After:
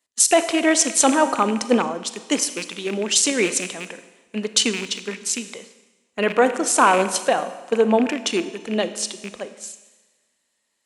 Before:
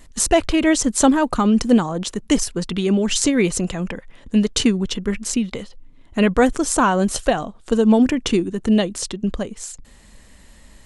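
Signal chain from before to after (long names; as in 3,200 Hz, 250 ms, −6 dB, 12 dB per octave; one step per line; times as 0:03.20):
loose part that buzzes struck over −24 dBFS, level −17 dBFS
high-pass filter 390 Hz 12 dB per octave
four-comb reverb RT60 2.3 s, combs from 33 ms, DRR 10 dB
boost into a limiter +7 dB
multiband upward and downward expander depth 70%
level −6 dB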